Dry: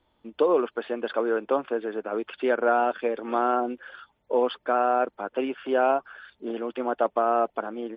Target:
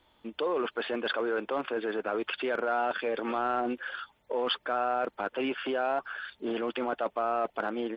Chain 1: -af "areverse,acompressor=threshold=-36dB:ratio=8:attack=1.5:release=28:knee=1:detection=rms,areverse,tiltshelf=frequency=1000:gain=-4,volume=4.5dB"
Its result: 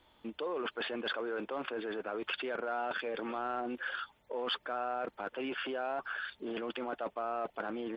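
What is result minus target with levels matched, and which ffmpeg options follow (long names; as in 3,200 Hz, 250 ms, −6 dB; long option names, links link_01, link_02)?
downward compressor: peak gain reduction +7 dB
-af "areverse,acompressor=threshold=-28dB:ratio=8:attack=1.5:release=28:knee=1:detection=rms,areverse,tiltshelf=frequency=1000:gain=-4,volume=4.5dB"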